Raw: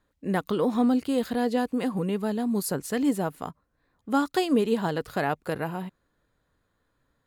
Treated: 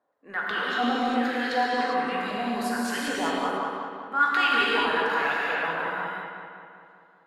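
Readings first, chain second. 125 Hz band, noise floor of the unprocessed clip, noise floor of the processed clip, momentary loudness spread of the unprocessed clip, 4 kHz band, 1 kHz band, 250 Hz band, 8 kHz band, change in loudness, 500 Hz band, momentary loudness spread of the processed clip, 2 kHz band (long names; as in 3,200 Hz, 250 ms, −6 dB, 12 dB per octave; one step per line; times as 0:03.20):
−12.0 dB, −74 dBFS, −58 dBFS, 8 LU, +9.0 dB, +7.0 dB, −5.5 dB, −2.5 dB, +1.0 dB, −2.5 dB, 11 LU, +12.5 dB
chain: high-pass filter 150 Hz
reverb reduction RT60 1.3 s
dynamic equaliser 1,700 Hz, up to +7 dB, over −46 dBFS, Q 1.3
auto-filter band-pass saw up 1.3 Hz 640–4,000 Hz
in parallel at +1 dB: brickwall limiter −27 dBFS, peak gain reduction 12 dB
on the sum: transient designer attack −6 dB, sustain +8 dB
on a send: feedback echo with a low-pass in the loop 194 ms, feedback 61%, low-pass 4,100 Hz, level −6 dB
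on the sum: reverb whose tail is shaped and stops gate 430 ms flat, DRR −5.5 dB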